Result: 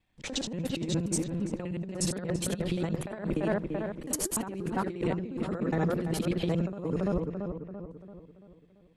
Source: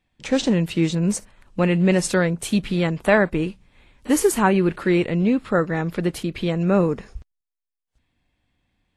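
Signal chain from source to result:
reversed piece by piece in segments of 59 ms
dynamic equaliser 2,100 Hz, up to −6 dB, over −39 dBFS, Q 1
feedback echo with a low-pass in the loop 338 ms, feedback 49%, low-pass 2,300 Hz, level −8.5 dB
compressor whose output falls as the input rises −23 dBFS, ratio −0.5
level −6.5 dB

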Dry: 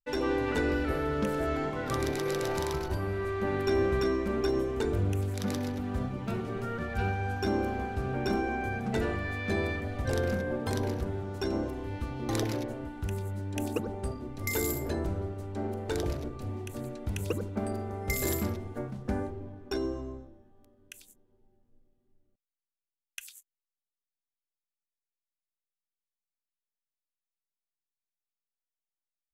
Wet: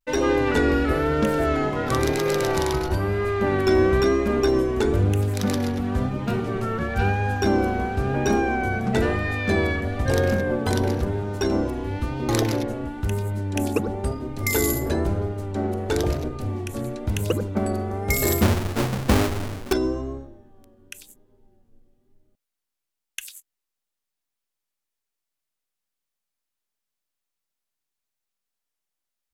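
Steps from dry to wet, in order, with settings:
0:18.42–0:19.73: each half-wave held at its own peak
pitch vibrato 1 Hz 62 cents
level +8.5 dB

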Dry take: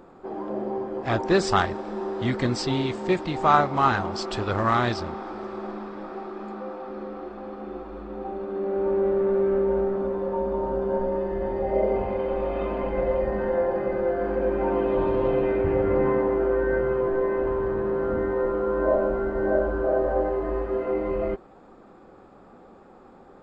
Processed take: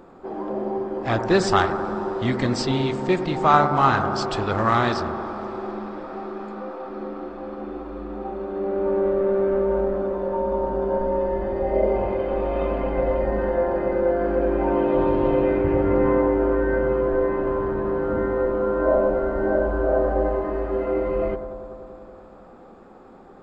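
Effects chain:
bucket-brigade delay 95 ms, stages 1,024, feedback 80%, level −10.5 dB
level +2 dB

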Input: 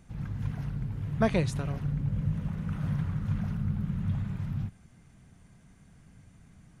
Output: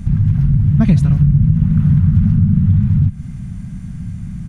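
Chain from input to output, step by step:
drawn EQ curve 200 Hz 0 dB, 410 Hz −21 dB, 1,400 Hz −15 dB
downward compressor 2.5 to 1, threshold −44 dBFS, peak gain reduction 13.5 dB
phase-vocoder stretch with locked phases 0.66×
on a send: single-tap delay 157 ms −22 dB
on the sum: boost into a limiter +32 dB
level −1 dB

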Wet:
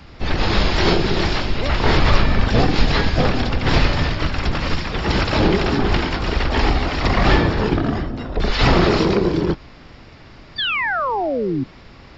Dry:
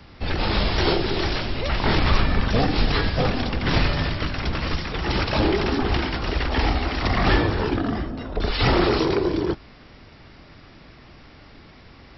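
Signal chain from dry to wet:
sound drawn into the spectrogram fall, 0:10.58–0:11.64, 250–3,600 Hz −25 dBFS
pitch-shifted copies added −12 semitones −5 dB, +5 semitones −14 dB
level +3 dB

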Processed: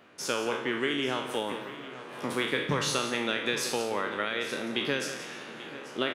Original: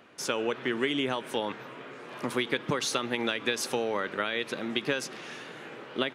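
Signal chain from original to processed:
peak hold with a decay on every bin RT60 0.62 s
multi-tap delay 175/837 ms −11/−15.5 dB
level −2.5 dB

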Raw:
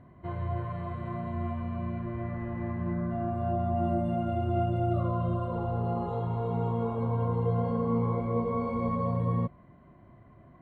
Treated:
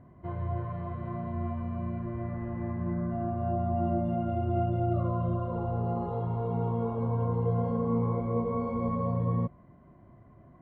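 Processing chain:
high-shelf EQ 2,300 Hz −11 dB

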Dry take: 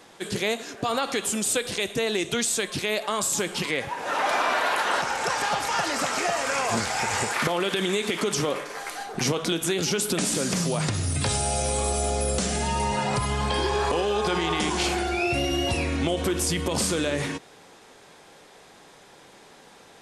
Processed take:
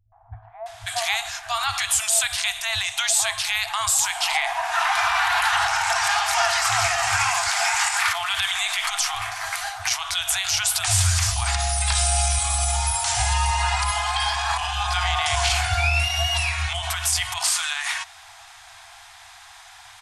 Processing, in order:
brickwall limiter −17.5 dBFS, peak gain reduction 6 dB
three-band delay without the direct sound lows, mids, highs 120/660 ms, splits 160/790 Hz
brick-wall band-stop 110–650 Hz
level +8 dB

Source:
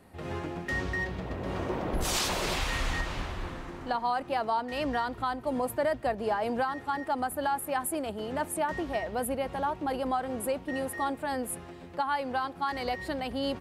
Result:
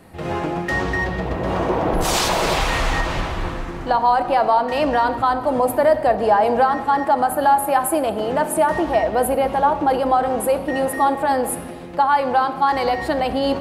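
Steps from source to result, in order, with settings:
dynamic equaliser 760 Hz, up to +7 dB, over −43 dBFS, Q 0.84
in parallel at −1 dB: brickwall limiter −24 dBFS, peak gain reduction 11 dB
on the sum: convolution reverb RT60 1.6 s, pre-delay 6 ms, DRR 9 dB
level +4 dB

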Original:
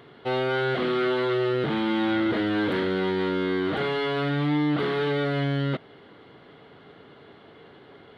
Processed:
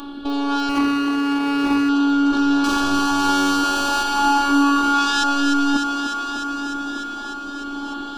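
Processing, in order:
in parallel at +1.5 dB: compressor whose output falls as the input rises −31 dBFS, ratio −0.5
0:03.63–0:05.24: on the sum: sound drawn into the spectrogram rise 480–1,800 Hz −19 dBFS
rotating-speaker cabinet horn 1.1 Hz
0:02.64–0:04.03: mid-hump overdrive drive 33 dB, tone 1,300 Hz, clips at −11 dBFS
sine wavefolder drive 9 dB, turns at −10.5 dBFS
phases set to zero 283 Hz
phaser with its sweep stopped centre 540 Hz, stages 6
on a send: feedback echo with a high-pass in the loop 300 ms, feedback 80%, high-pass 180 Hz, level −5.5 dB
0:00.69–0:01.89: on the sum: windowed peak hold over 9 samples

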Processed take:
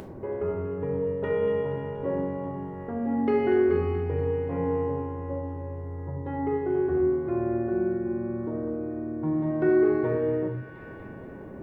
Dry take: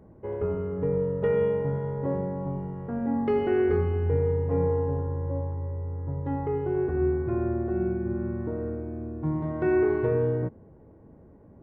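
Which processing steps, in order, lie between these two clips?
low-shelf EQ 100 Hz −11.5 dB
delay with a high-pass on its return 239 ms, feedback 60%, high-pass 2,200 Hz, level −5 dB
upward compression, threshold −31 dBFS
on a send at −3 dB: convolution reverb RT60 0.55 s, pre-delay 3 ms

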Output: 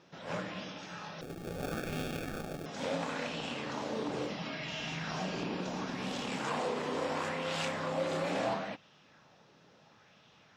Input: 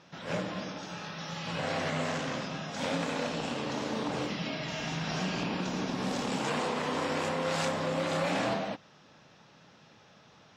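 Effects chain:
0:01.21–0:02.66: sample-rate reduction 1,000 Hz, jitter 0%
auto-filter bell 0.73 Hz 370–3,100 Hz +7 dB
level −5.5 dB

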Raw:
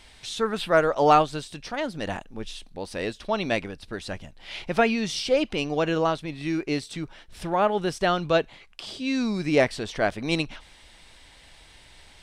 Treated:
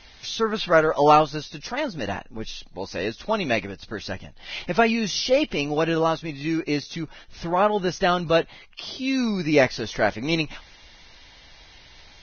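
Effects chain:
level +2 dB
Ogg Vorbis 16 kbit/s 16,000 Hz

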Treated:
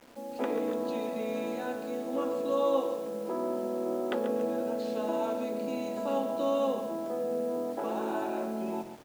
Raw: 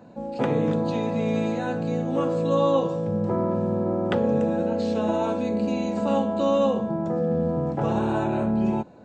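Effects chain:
elliptic high-pass filter 240 Hz, stop band 50 dB
bit-depth reduction 8 bits, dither none
on a send: echo with shifted repeats 121 ms, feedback 41%, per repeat −43 Hz, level −18 dB
on the sum: feedback echo at a low word length 138 ms, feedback 35%, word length 7 bits, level −10.5 dB
level −6.5 dB

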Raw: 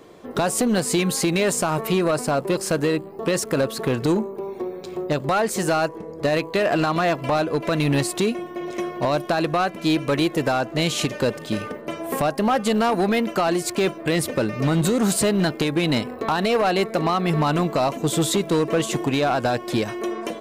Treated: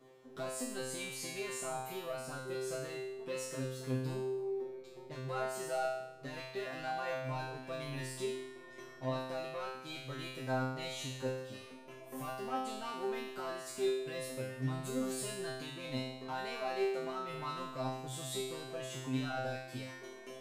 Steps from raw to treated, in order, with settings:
reversed playback
upward compression, threshold −30 dBFS
reversed playback
tuned comb filter 130 Hz, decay 0.9 s, harmonics all, mix 100%
level −1.5 dB

